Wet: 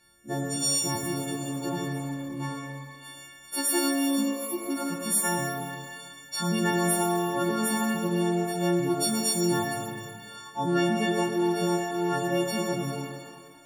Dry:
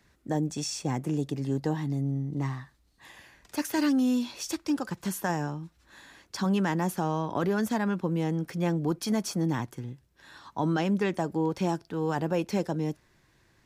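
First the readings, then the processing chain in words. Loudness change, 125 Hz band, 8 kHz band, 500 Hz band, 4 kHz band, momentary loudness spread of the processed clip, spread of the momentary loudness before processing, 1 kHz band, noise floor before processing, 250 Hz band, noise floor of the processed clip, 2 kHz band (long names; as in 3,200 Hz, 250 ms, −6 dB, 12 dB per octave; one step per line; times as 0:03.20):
+2.0 dB, −2.5 dB, +11.0 dB, +3.0 dB, +8.0 dB, 14 LU, 8 LU, +3.0 dB, −66 dBFS, +0.5 dB, −49 dBFS, +5.0 dB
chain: every partial snapped to a pitch grid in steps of 4 semitones
gain on a spectral selection 0:04.21–0:04.71, 920–9,300 Hz −26 dB
reverb with rising layers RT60 1.5 s, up +12 semitones, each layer −8 dB, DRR −0.5 dB
level −4.5 dB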